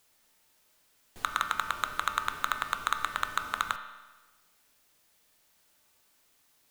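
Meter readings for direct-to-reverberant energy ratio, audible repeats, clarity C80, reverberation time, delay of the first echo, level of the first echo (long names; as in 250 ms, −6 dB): 6.0 dB, no echo audible, 10.5 dB, 1.2 s, no echo audible, no echo audible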